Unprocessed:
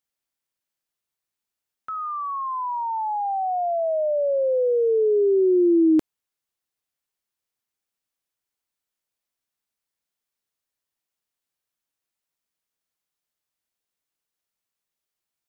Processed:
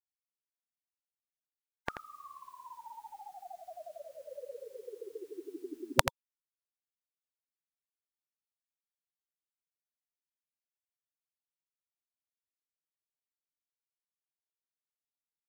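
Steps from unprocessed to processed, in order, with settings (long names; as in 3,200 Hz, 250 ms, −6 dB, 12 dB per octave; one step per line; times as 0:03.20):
gate on every frequency bin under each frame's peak −25 dB weak
single-tap delay 84 ms −8.5 dB
level +18 dB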